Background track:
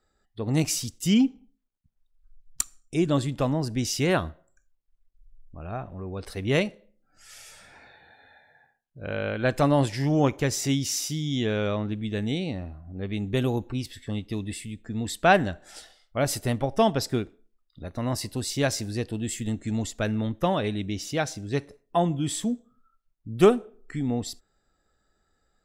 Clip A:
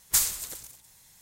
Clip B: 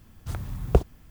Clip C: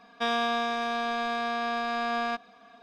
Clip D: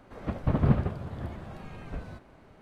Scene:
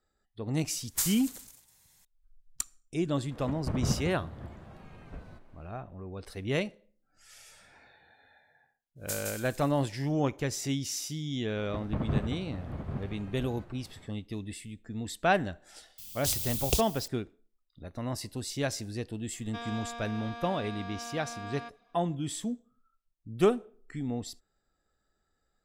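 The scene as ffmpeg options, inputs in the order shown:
-filter_complex "[1:a]asplit=2[a][b];[4:a]asplit=2[c][d];[0:a]volume=-6.5dB[e];[b]aecho=1:1:164:0.668[f];[d]aecho=1:1:793:0.422[g];[2:a]aexciter=amount=15:drive=8.2:freq=2.6k[h];[a]atrim=end=1.21,asetpts=PTS-STARTPTS,volume=-7dB,afade=t=in:d=0.004:c=hsin,afade=t=out:st=1.206:d=0.004:c=hsin,adelay=840[i];[c]atrim=end=2.61,asetpts=PTS-STARTPTS,volume=-7dB,afade=t=in:d=0.004:c=hsin,afade=t=out:st=2.606:d=0.004:c=hsin,adelay=3200[j];[f]atrim=end=1.21,asetpts=PTS-STARTPTS,volume=-14dB,afade=t=in:d=0.1,afade=t=out:st=1.11:d=0.1,adelay=8950[k];[g]atrim=end=2.61,asetpts=PTS-STARTPTS,volume=-6.5dB,afade=t=in:d=0.004:c=hsin,afade=t=out:st=2.606:d=0.004:c=hsin,adelay=505386S[l];[h]atrim=end=1.1,asetpts=PTS-STARTPTS,volume=-11dB,afade=t=in:d=0.004:c=hsin,afade=t=out:st=1.096:d=0.004:c=hsin,adelay=15980[m];[3:a]atrim=end=2.82,asetpts=PTS-STARTPTS,volume=-13dB,afade=t=in:d=0.004:c=hsin,afade=t=out:st=2.816:d=0.004:c=hsin,adelay=19330[n];[e][i][j][k][l][m][n]amix=inputs=7:normalize=0"

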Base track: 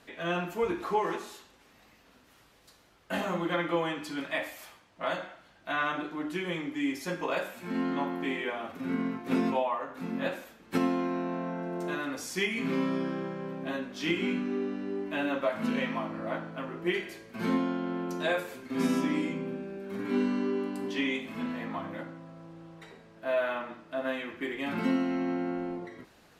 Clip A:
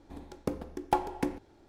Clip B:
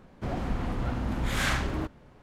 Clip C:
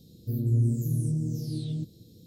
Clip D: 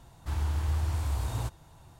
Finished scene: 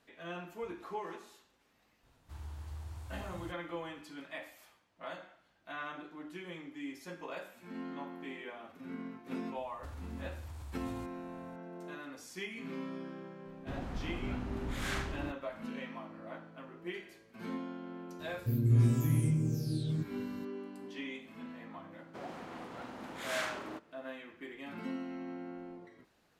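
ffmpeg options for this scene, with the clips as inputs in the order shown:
-filter_complex "[4:a]asplit=2[a][b];[2:a]asplit=2[c][d];[0:a]volume=-12dB[e];[b]acompressor=threshold=-33dB:ratio=6:attack=3.2:release=140:knee=1:detection=peak[f];[d]highpass=320[g];[a]atrim=end=1.99,asetpts=PTS-STARTPTS,volume=-15.5dB,afade=t=in:d=0.004:c=hsin,afade=t=out:st=1.986:d=0.004:c=hsin,adelay=2030[h];[f]atrim=end=1.99,asetpts=PTS-STARTPTS,volume=-9.5dB,afade=t=in:d=0.004:c=hsin,afade=t=out:st=1.986:d=0.004:c=hsin,adelay=9570[i];[c]atrim=end=2.22,asetpts=PTS-STARTPTS,volume=-9.5dB,afade=t=in:d=0.004:c=hsin,afade=t=out:st=2.216:d=0.004:c=hsin,adelay=13450[j];[3:a]atrim=end=2.26,asetpts=PTS-STARTPTS,volume=-2dB,afade=t=in:d=0.004:c=hsin,afade=t=out:st=2.256:d=0.004:c=hsin,adelay=18190[k];[g]atrim=end=2.22,asetpts=PTS-STARTPTS,volume=-8dB,afade=t=in:d=0.004:c=hsin,afade=t=out:st=2.216:d=0.004:c=hsin,adelay=21920[l];[e][h][i][j][k][l]amix=inputs=6:normalize=0"

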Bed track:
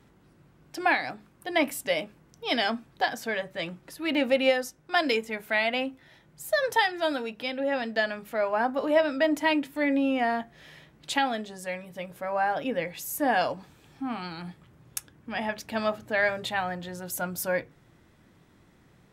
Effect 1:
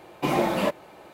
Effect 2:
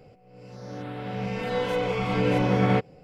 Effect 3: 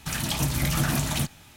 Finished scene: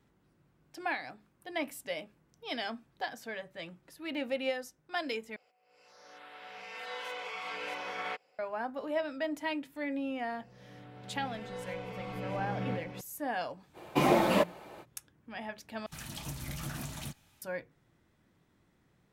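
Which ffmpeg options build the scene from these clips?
-filter_complex "[2:a]asplit=2[a][b];[0:a]volume=-10.5dB[c];[a]highpass=1k[d];[b]aecho=1:1:42|478:0.299|0.473[e];[c]asplit=3[f][g][h];[f]atrim=end=5.364[i];[d]atrim=end=3.03,asetpts=PTS-STARTPTS,volume=-6dB[j];[g]atrim=start=8.386:end=15.864[k];[3:a]atrim=end=1.56,asetpts=PTS-STARTPTS,volume=-15dB[l];[h]atrim=start=17.416[m];[e]atrim=end=3.03,asetpts=PTS-STARTPTS,volume=-16dB,afade=t=in:d=0.004:c=hsin,afade=t=out:st=3.026:d=0.004:c=hsin,adelay=9980[n];[1:a]atrim=end=1.13,asetpts=PTS-STARTPTS,volume=-1.5dB,afade=t=in:d=0.05,afade=t=out:st=1.08:d=0.05,adelay=13730[o];[i][j]acrossfade=d=0.004:c1=hsin:c2=hsin[p];[p][k]acrossfade=d=0.004:c1=hsin:c2=hsin[q];[q][l]acrossfade=d=0.004:c1=hsin:c2=hsin[r];[r][m]acrossfade=d=0.004:c1=hsin:c2=hsin[s];[s][n][o]amix=inputs=3:normalize=0"

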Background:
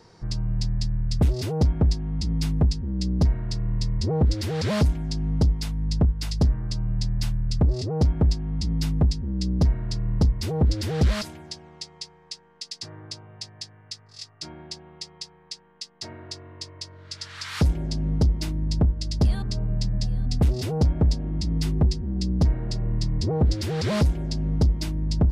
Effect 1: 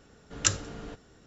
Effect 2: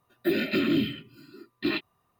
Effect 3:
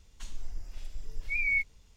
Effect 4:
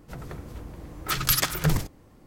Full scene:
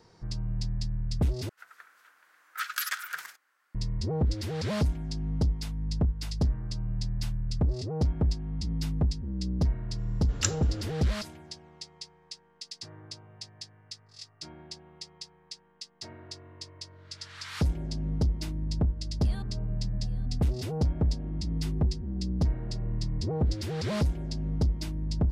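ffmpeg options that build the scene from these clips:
-filter_complex "[0:a]volume=-6dB[a];[4:a]highpass=f=1.5k:t=q:w=4.4[b];[a]asplit=2[c][d];[c]atrim=end=1.494[e];[b]atrim=end=2.26,asetpts=PTS-STARTPTS,volume=-11.5dB[f];[d]atrim=start=3.746[g];[1:a]atrim=end=1.26,asetpts=PTS-STARTPTS,volume=-3.5dB,afade=t=in:d=0.004:c=hsin,afade=t=out:st=1.256:d=0.004:c=hsin,adelay=9980[h];[e][f]acrossfade=d=0.004:c1=hsin:c2=hsin[i];[i][g]acrossfade=d=0.004:c1=hsin:c2=hsin[j];[j][h]amix=inputs=2:normalize=0"

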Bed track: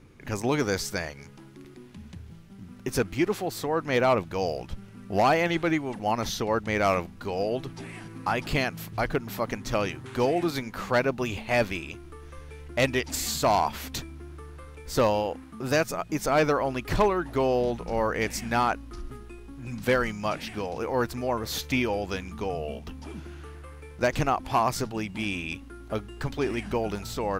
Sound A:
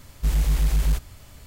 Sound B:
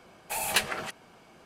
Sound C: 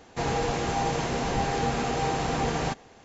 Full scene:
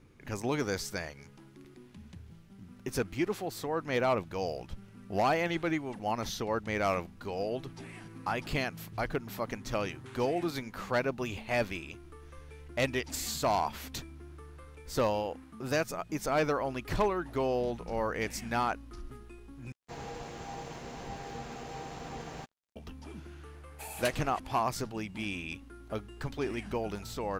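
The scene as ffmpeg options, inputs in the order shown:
-filter_complex "[0:a]volume=-6dB[a];[3:a]aeval=exprs='sgn(val(0))*max(abs(val(0))-0.00596,0)':c=same[b];[a]asplit=2[c][d];[c]atrim=end=19.724[e];[b]atrim=end=3.04,asetpts=PTS-STARTPTS,volume=-14dB[f];[d]atrim=start=22.756[g];[2:a]atrim=end=1.45,asetpts=PTS-STARTPTS,volume=-12dB,afade=t=in:d=0.004:c=hsin,afade=t=out:st=1.446:d=0.004:c=hsin,adelay=23490[h];[e][f]acrossfade=d=0.004:c1=hsin:c2=hsin[i];[i][g]acrossfade=d=0.004:c1=hsin:c2=hsin[j];[j][h]amix=inputs=2:normalize=0"

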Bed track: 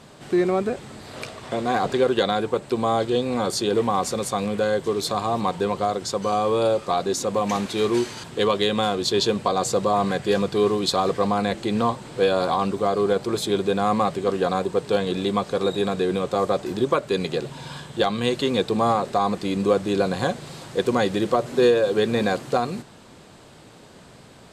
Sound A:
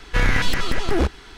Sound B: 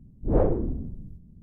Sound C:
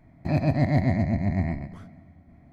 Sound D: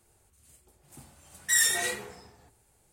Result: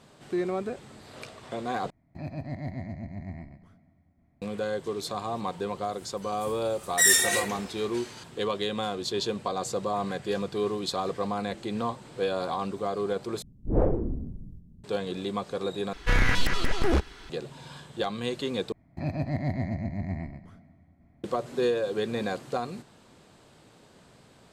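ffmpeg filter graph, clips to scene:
-filter_complex "[3:a]asplit=2[a][b];[0:a]volume=-8.5dB[c];[4:a]dynaudnorm=f=110:g=11:m=11.5dB[d];[c]asplit=5[e][f][g][h][i];[e]atrim=end=1.904[j];[a]atrim=end=2.52,asetpts=PTS-STARTPTS,volume=-13.5dB[k];[f]atrim=start=4.416:end=13.424[l];[2:a]atrim=end=1.42,asetpts=PTS-STARTPTS,volume=-2dB[m];[g]atrim=start=14.836:end=15.934[n];[1:a]atrim=end=1.37,asetpts=PTS-STARTPTS,volume=-4dB[o];[h]atrim=start=17.296:end=18.724[p];[b]atrim=end=2.52,asetpts=PTS-STARTPTS,volume=-7.5dB[q];[i]atrim=start=21.236[r];[d]atrim=end=2.92,asetpts=PTS-STARTPTS,volume=-5.5dB,afade=t=in:d=0.004:c=hsin,afade=t=out:st=2.916:d=0.004:c=hsin,adelay=242109S[s];[j][k]acrossfade=d=0.004:c1=hsin:c2=hsin[t];[t][l]acrossfade=d=0.004:c1=hsin:c2=hsin[u];[u][m]acrossfade=d=0.004:c1=hsin:c2=hsin[v];[v][n]acrossfade=d=0.004:c1=hsin:c2=hsin[w];[w][o]acrossfade=d=0.004:c1=hsin:c2=hsin[x];[x][p]acrossfade=d=0.004:c1=hsin:c2=hsin[y];[y][q]acrossfade=d=0.004:c1=hsin:c2=hsin[z];[z][r]acrossfade=d=0.004:c1=hsin:c2=hsin[aa];[aa][s]amix=inputs=2:normalize=0"

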